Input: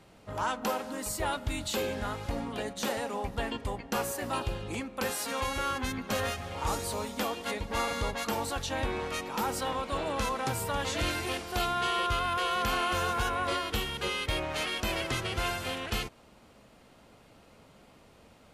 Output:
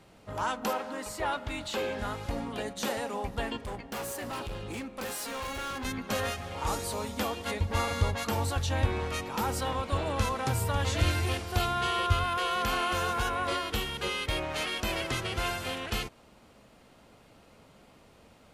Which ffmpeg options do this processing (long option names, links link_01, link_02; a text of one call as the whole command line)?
ffmpeg -i in.wav -filter_complex "[0:a]asettb=1/sr,asplit=3[link_01][link_02][link_03];[link_01]atrim=end=0.734[link_04];[link_02]atrim=start=0.73:end=1.99,asetpts=PTS-STARTPTS,afade=type=in:duration=0.004:curve=qsin,afade=type=out:start_time=1.256:duration=0.004:curve=qsin,asplit=2[link_05][link_06];[link_06]highpass=frequency=720:poles=1,volume=9dB,asoftclip=type=tanh:threshold=-20dB[link_07];[link_05][link_07]amix=inputs=2:normalize=0,lowpass=frequency=2100:poles=1,volume=-6dB[link_08];[link_03]atrim=start=1.986[link_09];[link_04][link_08]acrossfade=duration=0.004:curve1=hsin:curve2=qsin[link_10];[link_10][link_09]acrossfade=duration=0.004:curve1=qsin:curve2=hsin,asettb=1/sr,asplit=3[link_11][link_12][link_13];[link_11]atrim=end=3.604[link_14];[link_12]atrim=start=3.6:end=5.85,asetpts=PTS-STARTPTS,afade=type=in:duration=0.004:curve=qsin,afade=type=out:start_time=2.246:duration=0.004:curve=qsin,asoftclip=type=hard:threshold=-33.5dB[link_15];[link_13]atrim=start=5.846[link_16];[link_14][link_15]acrossfade=duration=0.004:curve1=hsin:curve2=qsin[link_17];[link_17][link_16]acrossfade=duration=0.004:curve1=qsin:curve2=hsin,asettb=1/sr,asplit=3[link_18][link_19][link_20];[link_18]atrim=end=7.044[link_21];[link_19]atrim=start=7.04:end=12.24,asetpts=PTS-STARTPTS,afade=type=in:duration=0.004:curve=qsin,afade=type=out:start_time=5.196:duration=0.004:curve=qsin,equalizer=frequency=90:width_type=o:width=0.77:gain=14[link_22];[link_20]atrim=start=12.236[link_23];[link_21][link_22]acrossfade=duration=0.004:curve1=hsin:curve2=qsin[link_24];[link_24][link_23]acrossfade=duration=0.004:curve1=qsin:curve2=hsin" out.wav